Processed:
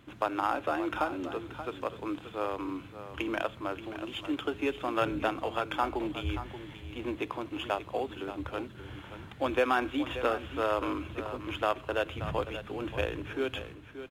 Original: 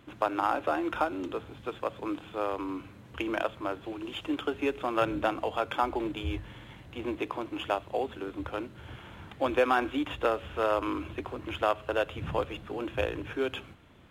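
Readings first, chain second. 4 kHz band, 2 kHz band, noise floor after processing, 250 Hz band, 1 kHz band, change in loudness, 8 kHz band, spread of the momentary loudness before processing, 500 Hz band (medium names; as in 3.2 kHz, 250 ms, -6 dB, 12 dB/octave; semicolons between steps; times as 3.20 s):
0.0 dB, -0.5 dB, -48 dBFS, -1.0 dB, -1.5 dB, -1.5 dB, no reading, 10 LU, -2.0 dB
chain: peaking EQ 650 Hz -2.5 dB 2 oct; delay 580 ms -11.5 dB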